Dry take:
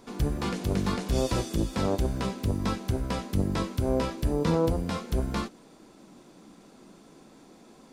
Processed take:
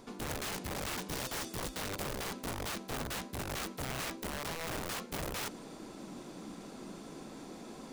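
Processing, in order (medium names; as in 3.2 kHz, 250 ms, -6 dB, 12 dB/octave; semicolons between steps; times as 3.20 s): reverse; compression 5:1, threshold -40 dBFS, peak gain reduction 18 dB; reverse; integer overflow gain 38.5 dB; trim +5.5 dB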